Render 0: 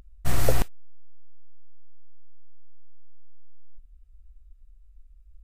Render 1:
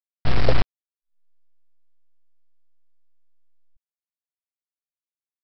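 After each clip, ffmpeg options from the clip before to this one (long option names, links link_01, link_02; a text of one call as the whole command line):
ffmpeg -i in.wav -af "dynaudnorm=framelen=130:gausssize=7:maxgain=4.5dB,aresample=11025,acrusher=bits=3:mix=0:aa=0.5,aresample=44100,volume=1.5dB" out.wav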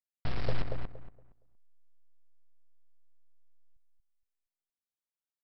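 ffmpeg -i in.wav -filter_complex "[0:a]acompressor=threshold=-24dB:ratio=2,asplit=2[link_01][link_02];[link_02]adelay=233,lowpass=frequency=1700:poles=1,volume=-3.5dB,asplit=2[link_03][link_04];[link_04]adelay=233,lowpass=frequency=1700:poles=1,volume=0.25,asplit=2[link_05][link_06];[link_06]adelay=233,lowpass=frequency=1700:poles=1,volume=0.25,asplit=2[link_07][link_08];[link_08]adelay=233,lowpass=frequency=1700:poles=1,volume=0.25[link_09];[link_03][link_05][link_07][link_09]amix=inputs=4:normalize=0[link_10];[link_01][link_10]amix=inputs=2:normalize=0,volume=-6.5dB" out.wav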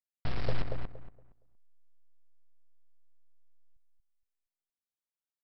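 ffmpeg -i in.wav -af anull out.wav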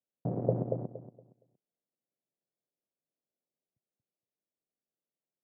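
ffmpeg -i in.wav -af "crystalizer=i=4.5:c=0,asuperpass=centerf=290:order=8:qfactor=0.55,volume=9dB" out.wav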